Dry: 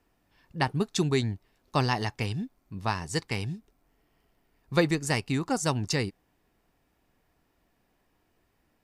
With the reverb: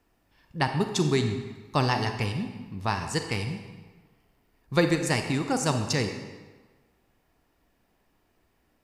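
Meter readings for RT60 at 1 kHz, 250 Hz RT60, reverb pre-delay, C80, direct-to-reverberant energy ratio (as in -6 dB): 1.4 s, 1.3 s, 33 ms, 8.5 dB, 6.0 dB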